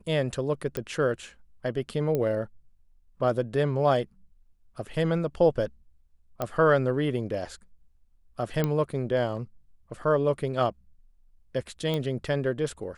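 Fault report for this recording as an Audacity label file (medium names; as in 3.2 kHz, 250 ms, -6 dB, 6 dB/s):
0.770000	0.770000	pop -16 dBFS
2.150000	2.150000	pop -16 dBFS
6.420000	6.420000	pop -15 dBFS
8.640000	8.640000	pop -13 dBFS
11.940000	11.940000	pop -17 dBFS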